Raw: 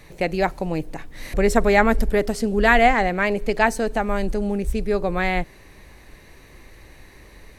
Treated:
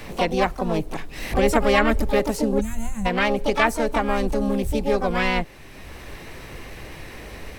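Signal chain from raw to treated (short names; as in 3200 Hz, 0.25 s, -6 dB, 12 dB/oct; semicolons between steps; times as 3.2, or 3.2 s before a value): harmoniser +5 st -3 dB, +12 st -13 dB; spectral gain 2.61–3.06, 230–6100 Hz -29 dB; three-band squash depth 40%; gain -1.5 dB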